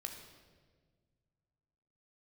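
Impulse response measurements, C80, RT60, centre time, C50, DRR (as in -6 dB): 7.5 dB, 1.6 s, 34 ms, 6.0 dB, 2.5 dB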